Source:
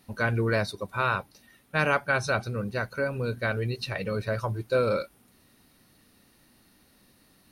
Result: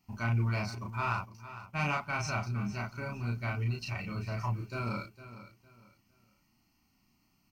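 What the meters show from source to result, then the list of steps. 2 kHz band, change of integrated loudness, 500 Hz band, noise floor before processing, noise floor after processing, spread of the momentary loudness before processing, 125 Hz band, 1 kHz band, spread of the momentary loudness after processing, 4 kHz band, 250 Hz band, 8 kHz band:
-9.0 dB, -6.5 dB, -15.0 dB, -62 dBFS, -72 dBFS, 7 LU, -1.5 dB, -5.5 dB, 13 LU, -7.5 dB, -4.5 dB, -3.0 dB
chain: peaking EQ 1.2 kHz -2.5 dB 0.36 oct; static phaser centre 2.5 kHz, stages 8; waveshaping leveller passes 1; doubling 34 ms -2 dB; feedback delay 457 ms, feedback 28%, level -14 dB; trim -7.5 dB

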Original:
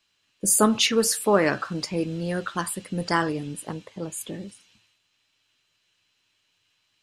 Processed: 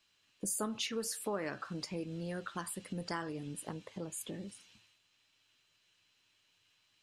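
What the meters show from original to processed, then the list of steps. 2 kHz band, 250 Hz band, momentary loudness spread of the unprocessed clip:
-16.0 dB, -14.5 dB, 16 LU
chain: compression 2.5:1, threshold -39 dBFS, peak gain reduction 16.5 dB; trim -2.5 dB

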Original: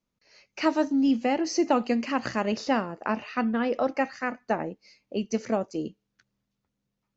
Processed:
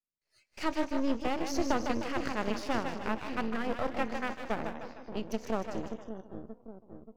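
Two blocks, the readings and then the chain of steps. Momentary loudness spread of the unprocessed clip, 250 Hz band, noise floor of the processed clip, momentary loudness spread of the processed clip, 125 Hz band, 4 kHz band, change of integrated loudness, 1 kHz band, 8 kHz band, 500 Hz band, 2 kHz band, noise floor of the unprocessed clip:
10 LU, -8.0 dB, -80 dBFS, 13 LU, -3.0 dB, -4.5 dB, -7.0 dB, -5.5 dB, no reading, -6.5 dB, -4.5 dB, -82 dBFS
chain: two-band feedback delay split 440 Hz, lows 580 ms, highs 153 ms, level -5 dB; half-wave rectifier; spectral noise reduction 16 dB; trim -4 dB

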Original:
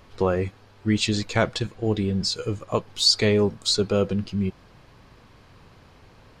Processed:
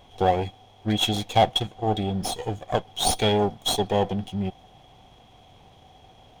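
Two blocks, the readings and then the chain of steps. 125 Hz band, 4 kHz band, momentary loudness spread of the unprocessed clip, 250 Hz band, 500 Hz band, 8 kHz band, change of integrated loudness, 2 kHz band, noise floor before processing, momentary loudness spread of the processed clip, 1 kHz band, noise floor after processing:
-2.0 dB, -2.0 dB, 9 LU, -3.0 dB, -1.0 dB, -0.5 dB, -1.5 dB, -4.5 dB, -53 dBFS, 10 LU, +9.0 dB, -54 dBFS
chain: comb filter that takes the minimum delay 0.32 ms; small resonant body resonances 750/3300 Hz, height 18 dB, ringing for 35 ms; trim -3 dB

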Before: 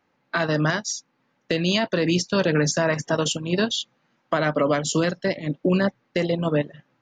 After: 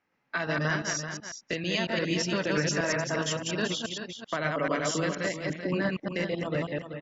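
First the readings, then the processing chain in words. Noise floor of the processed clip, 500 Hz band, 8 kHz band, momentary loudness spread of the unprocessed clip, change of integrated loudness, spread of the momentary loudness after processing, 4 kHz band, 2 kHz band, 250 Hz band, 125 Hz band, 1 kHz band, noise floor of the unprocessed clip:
-74 dBFS, -7.0 dB, -4.5 dB, 6 LU, -6.5 dB, 7 LU, -5.5 dB, -3.0 dB, -7.5 dB, -7.0 dB, -5.5 dB, -70 dBFS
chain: chunks repeated in reverse 117 ms, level -1 dB; rippled Chebyshev low-pass 7.5 kHz, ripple 6 dB; on a send: delay 384 ms -9 dB; on the sum: trim -4.5 dB

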